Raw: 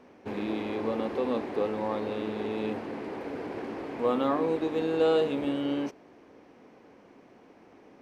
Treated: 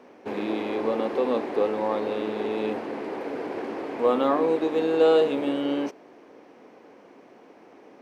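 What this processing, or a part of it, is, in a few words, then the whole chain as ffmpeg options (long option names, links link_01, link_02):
filter by subtraction: -filter_complex "[0:a]asplit=2[link_01][link_02];[link_02]lowpass=440,volume=-1[link_03];[link_01][link_03]amix=inputs=2:normalize=0,volume=3.5dB"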